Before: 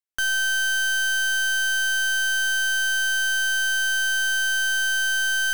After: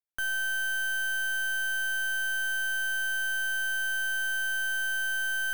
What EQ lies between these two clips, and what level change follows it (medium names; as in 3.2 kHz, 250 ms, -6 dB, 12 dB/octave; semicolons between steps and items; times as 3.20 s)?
peaking EQ 4.9 kHz -12 dB 1.3 oct; -5.0 dB